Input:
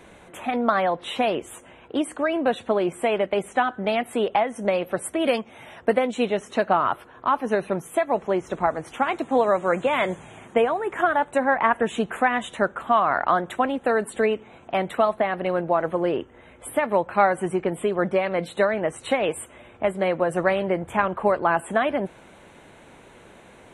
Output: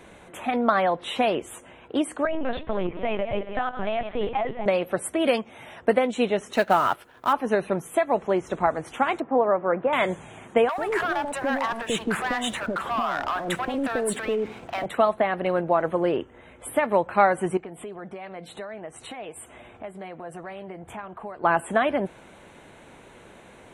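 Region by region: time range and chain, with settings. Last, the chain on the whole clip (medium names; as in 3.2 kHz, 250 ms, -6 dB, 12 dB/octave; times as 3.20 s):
2.25–4.66 s: backward echo that repeats 133 ms, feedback 43%, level -11.5 dB + compression 3:1, threshold -22 dBFS + LPC vocoder at 8 kHz pitch kept
6.53–7.33 s: companding laws mixed up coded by A + treble shelf 2.1 kHz +7.5 dB + band-stop 1.1 kHz, Q 9.3
9.20–9.93 s: Bessel low-pass 1.3 kHz, order 4 + bass shelf 130 Hz -9.5 dB
10.69–14.86 s: compression 3:1, threshold -28 dBFS + waveshaping leveller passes 2 + bands offset in time highs, lows 90 ms, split 690 Hz
17.57–21.44 s: peaking EQ 720 Hz +5 dB 0.33 oct + compression 2.5:1, threshold -40 dBFS + band-stop 550 Hz, Q 9.8
whole clip: none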